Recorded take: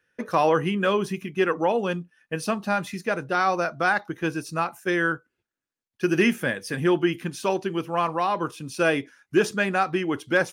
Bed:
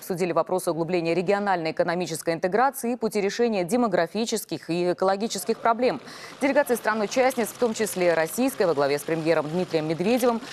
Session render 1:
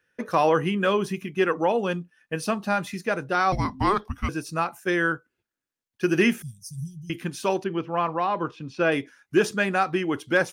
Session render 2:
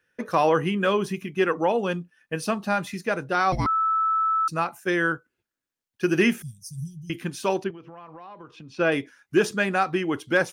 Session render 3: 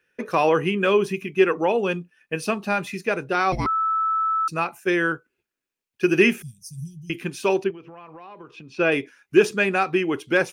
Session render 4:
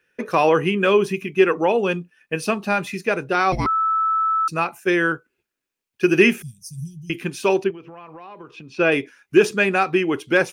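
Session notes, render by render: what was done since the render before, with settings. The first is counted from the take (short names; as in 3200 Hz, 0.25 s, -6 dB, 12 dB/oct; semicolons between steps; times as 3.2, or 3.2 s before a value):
3.52–4.29 frequency shift -400 Hz; 6.42–7.1 Chebyshev band-stop 150–5600 Hz, order 4; 7.64–8.92 air absorption 190 m
3.66–4.48 bleep 1310 Hz -19.5 dBFS; 7.7–8.75 compressor 12:1, threshold -39 dBFS
thirty-one-band EQ 100 Hz -7 dB, 400 Hz +7 dB, 2500 Hz +8 dB
gain +2.5 dB; limiter -3 dBFS, peak gain reduction 1.5 dB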